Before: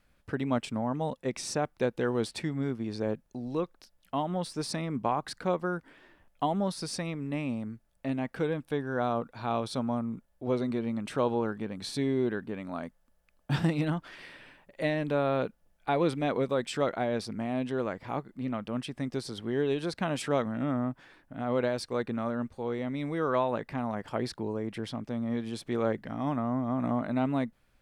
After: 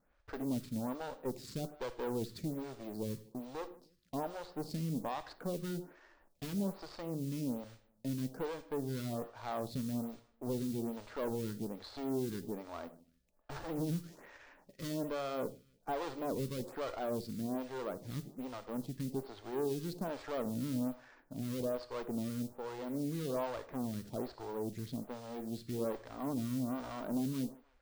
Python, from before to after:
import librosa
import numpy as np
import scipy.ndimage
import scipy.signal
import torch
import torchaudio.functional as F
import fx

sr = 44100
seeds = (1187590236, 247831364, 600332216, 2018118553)

p1 = scipy.ndimage.median_filter(x, 15, mode='constant')
p2 = fx.tube_stage(p1, sr, drive_db=32.0, bias=0.55)
p3 = fx.mod_noise(p2, sr, seeds[0], snr_db=19)
p4 = fx.peak_eq(p3, sr, hz=4100.0, db=5.0, octaves=1.3)
p5 = p4 + fx.echo_feedback(p4, sr, ms=153, feedback_pct=30, wet_db=-23, dry=0)
p6 = fx.dynamic_eq(p5, sr, hz=2100.0, q=0.8, threshold_db=-55.0, ratio=4.0, max_db=-7)
p7 = fx.rev_gated(p6, sr, seeds[1], gate_ms=120, shape='flat', drr_db=12.0)
p8 = fx.stagger_phaser(p7, sr, hz=1.2)
y = p8 * 10.0 ** (1.5 / 20.0)